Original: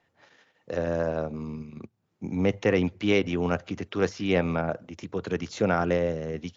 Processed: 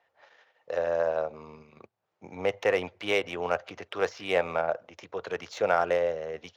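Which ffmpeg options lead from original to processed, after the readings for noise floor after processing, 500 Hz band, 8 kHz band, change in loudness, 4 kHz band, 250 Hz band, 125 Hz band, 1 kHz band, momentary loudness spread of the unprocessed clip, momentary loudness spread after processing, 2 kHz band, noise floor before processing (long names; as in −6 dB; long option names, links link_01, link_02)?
−78 dBFS, −0.5 dB, can't be measured, −2.0 dB, −0.5 dB, −13.5 dB, −15.5 dB, +2.0 dB, 12 LU, 11 LU, +0.5 dB, −74 dBFS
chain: -af "lowshelf=frequency=380:width_type=q:width=1.5:gain=-14,adynamicsmooth=sensitivity=5.5:basefreq=5500"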